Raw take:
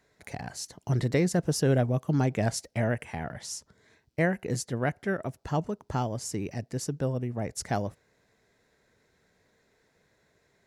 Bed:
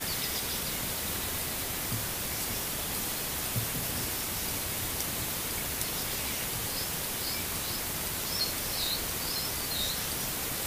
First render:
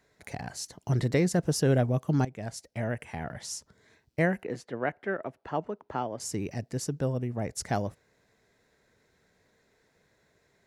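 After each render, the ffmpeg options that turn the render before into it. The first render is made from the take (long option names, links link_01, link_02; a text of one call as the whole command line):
ffmpeg -i in.wav -filter_complex "[0:a]asettb=1/sr,asplit=3[link_01][link_02][link_03];[link_01]atrim=end=4.434[link_04];[link_02]atrim=start=4.43:end=6.2,asetpts=PTS-STARTPTS,afade=type=in:duration=0.004:curve=qsin,afade=type=out:start_time=1.766:duration=0.004:curve=qsin,acrossover=split=250 3300:gain=0.2 1 0.1[link_05][link_06][link_07];[link_05][link_06][link_07]amix=inputs=3:normalize=0[link_08];[link_03]atrim=start=6.196[link_09];[link_04][link_08]acrossfade=duration=0.004:curve1=hsin:curve2=qsin[link_10];[link_10][link_09]acrossfade=duration=0.004:curve1=qsin:curve2=hsin,asplit=2[link_11][link_12];[link_11]atrim=end=2.25,asetpts=PTS-STARTPTS,afade=type=out:start_time=2.246:duration=0.004:curve=hsin:silence=0.16788[link_13];[link_12]atrim=start=2.25,asetpts=PTS-STARTPTS,afade=type=in:duration=1.14:silence=0.16788[link_14];[link_13][link_14]concat=n=2:v=0:a=1" out.wav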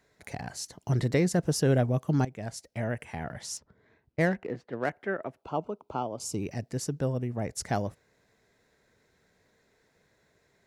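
ffmpeg -i in.wav -filter_complex "[0:a]asettb=1/sr,asplit=3[link_01][link_02][link_03];[link_01]atrim=end=3.574[link_04];[link_02]atrim=start=3.57:end=4.9,asetpts=PTS-STARTPTS,afade=type=in:duration=0.004:curve=qsin,afade=type=out:start_time=1.326:duration=0.004:curve=qsin,adynamicsmooth=sensitivity=7.5:basefreq=2200[link_05];[link_03]atrim=start=4.896[link_06];[link_04][link_05]acrossfade=duration=0.004:curve1=hsin:curve2=qsin[link_07];[link_07][link_06]acrossfade=duration=0.004:curve1=qsin:curve2=hsin,asettb=1/sr,asplit=3[link_08][link_09][link_10];[link_08]atrim=end=5.424[link_11];[link_09]atrim=start=5.42:end=6.43,asetpts=PTS-STARTPTS,afade=type=in:duration=0.004:curve=qsin,afade=type=out:start_time=1.006:duration=0.004:curve=qsin,asuperstop=centerf=1800:order=4:qfactor=1.9[link_12];[link_10]atrim=start=6.426[link_13];[link_11][link_12]acrossfade=duration=0.004:curve1=hsin:curve2=qsin[link_14];[link_14][link_13]acrossfade=duration=0.004:curve1=qsin:curve2=hsin" out.wav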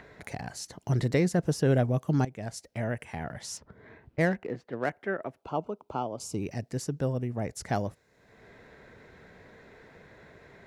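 ffmpeg -i in.wav -filter_complex "[0:a]acrossover=split=3200[link_01][link_02];[link_01]acompressor=mode=upward:threshold=-38dB:ratio=2.5[link_03];[link_02]alimiter=level_in=6dB:limit=-24dB:level=0:latency=1:release=158,volume=-6dB[link_04];[link_03][link_04]amix=inputs=2:normalize=0" out.wav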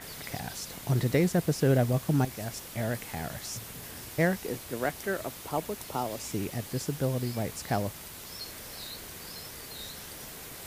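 ffmpeg -i in.wav -i bed.wav -filter_complex "[1:a]volume=-10.5dB[link_01];[0:a][link_01]amix=inputs=2:normalize=0" out.wav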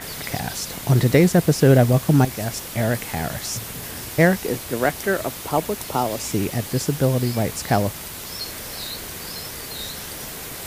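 ffmpeg -i in.wav -af "volume=10dB" out.wav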